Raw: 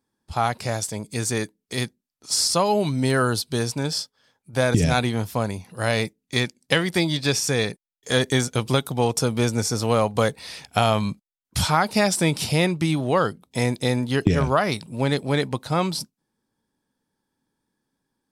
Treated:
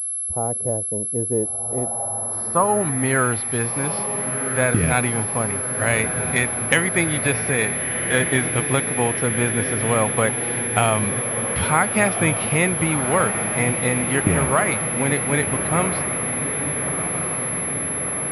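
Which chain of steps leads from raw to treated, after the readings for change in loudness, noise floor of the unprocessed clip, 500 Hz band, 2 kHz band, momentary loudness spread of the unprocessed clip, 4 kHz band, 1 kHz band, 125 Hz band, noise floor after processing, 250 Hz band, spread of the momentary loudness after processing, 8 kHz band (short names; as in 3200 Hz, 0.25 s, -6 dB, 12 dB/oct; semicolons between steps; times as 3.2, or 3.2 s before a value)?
+3.0 dB, -83 dBFS, +1.0 dB, +6.0 dB, 9 LU, -6.5 dB, +2.0 dB, +0.5 dB, -27 dBFS, +0.5 dB, 4 LU, +10.0 dB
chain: diffused feedback echo 1.397 s, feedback 71%, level -7.5 dB; low-pass sweep 490 Hz -> 2200 Hz, 1.63–3.11; pulse-width modulation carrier 11000 Hz; gain -1 dB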